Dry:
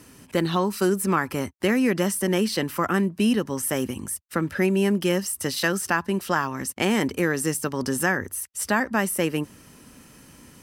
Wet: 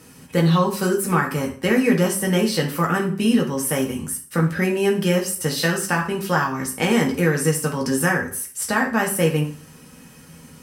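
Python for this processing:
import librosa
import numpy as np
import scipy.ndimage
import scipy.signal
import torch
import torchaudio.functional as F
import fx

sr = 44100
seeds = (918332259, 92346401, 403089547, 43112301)

y = fx.rev_fdn(x, sr, rt60_s=0.46, lf_ratio=1.0, hf_ratio=0.85, size_ms=37.0, drr_db=-1.0)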